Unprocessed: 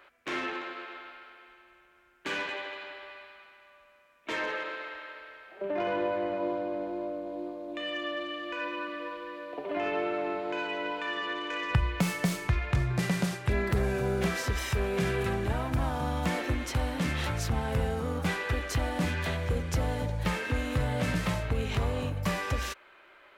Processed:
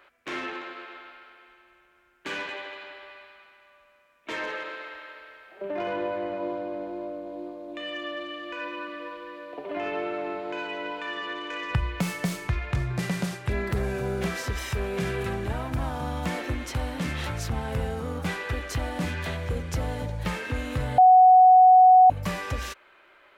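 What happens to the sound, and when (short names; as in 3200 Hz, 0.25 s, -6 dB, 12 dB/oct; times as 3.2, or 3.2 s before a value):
4.42–5.93 high shelf 7700 Hz +4.5 dB
20.98–22.1 bleep 741 Hz -10.5 dBFS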